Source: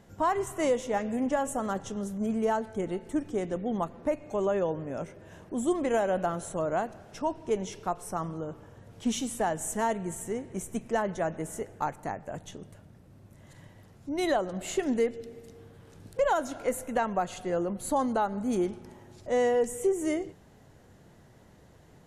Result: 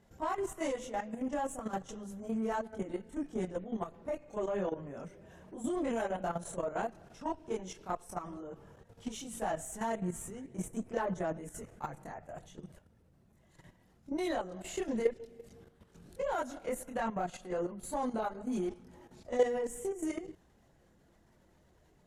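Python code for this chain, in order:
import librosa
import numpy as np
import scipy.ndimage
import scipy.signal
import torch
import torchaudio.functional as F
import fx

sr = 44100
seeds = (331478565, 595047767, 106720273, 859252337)

y = fx.chorus_voices(x, sr, voices=6, hz=0.76, base_ms=25, depth_ms=3.2, mix_pct=60)
y = fx.cheby_harmonics(y, sr, harmonics=(8,), levels_db=(-31,), full_scale_db=-14.0)
y = fx.level_steps(y, sr, step_db=11)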